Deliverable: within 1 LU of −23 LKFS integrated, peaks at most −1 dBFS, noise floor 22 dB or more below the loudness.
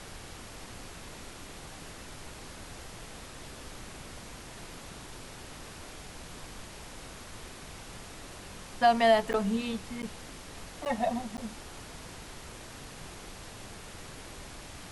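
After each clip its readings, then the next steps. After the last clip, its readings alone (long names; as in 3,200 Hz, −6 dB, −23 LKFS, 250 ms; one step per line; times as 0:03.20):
number of dropouts 4; longest dropout 9.3 ms; background noise floor −47 dBFS; target noise floor −58 dBFS; integrated loudness −36.0 LKFS; sample peak −12.0 dBFS; target loudness −23.0 LKFS
→ repair the gap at 0:09.33/0:10.02/0:10.85/0:11.37, 9.3 ms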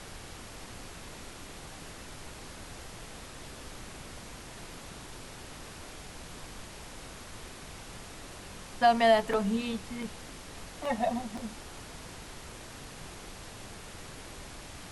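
number of dropouts 0; background noise floor −47 dBFS; target noise floor −58 dBFS
→ noise reduction from a noise print 11 dB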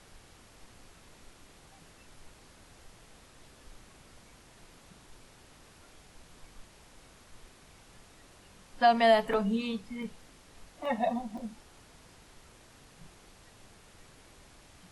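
background noise floor −57 dBFS; integrated loudness −29.0 LKFS; sample peak −12.0 dBFS; target loudness −23.0 LKFS
→ level +6 dB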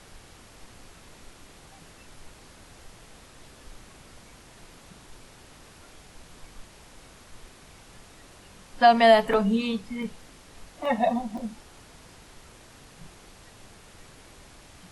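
integrated loudness −23.0 LKFS; sample peak −6.0 dBFS; background noise floor −51 dBFS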